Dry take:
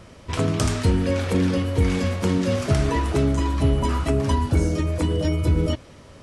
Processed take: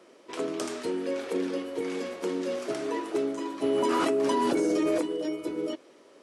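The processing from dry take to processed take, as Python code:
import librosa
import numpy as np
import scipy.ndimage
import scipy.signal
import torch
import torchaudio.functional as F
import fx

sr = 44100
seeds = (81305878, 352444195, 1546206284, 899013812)

y = fx.ladder_highpass(x, sr, hz=300.0, resonance_pct=50)
y = fx.env_flatten(y, sr, amount_pct=100, at=(3.62, 5.0), fade=0.02)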